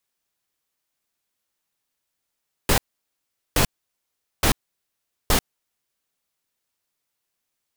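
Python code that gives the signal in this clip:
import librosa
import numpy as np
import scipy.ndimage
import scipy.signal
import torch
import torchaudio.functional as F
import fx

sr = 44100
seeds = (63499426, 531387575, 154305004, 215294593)

y = fx.noise_burst(sr, seeds[0], colour='pink', on_s=0.09, off_s=0.78, bursts=4, level_db=-17.5)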